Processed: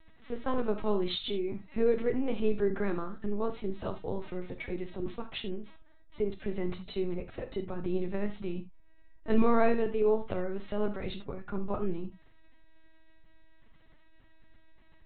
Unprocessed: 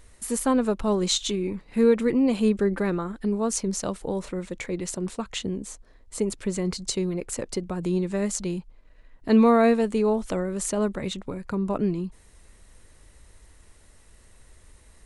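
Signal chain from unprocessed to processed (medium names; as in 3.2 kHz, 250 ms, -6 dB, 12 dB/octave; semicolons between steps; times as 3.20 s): dynamic bell 270 Hz, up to -6 dB, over -40 dBFS, Q 4.6; LPC vocoder at 8 kHz pitch kept; gated-style reverb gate 100 ms flat, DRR 7.5 dB; trim -5.5 dB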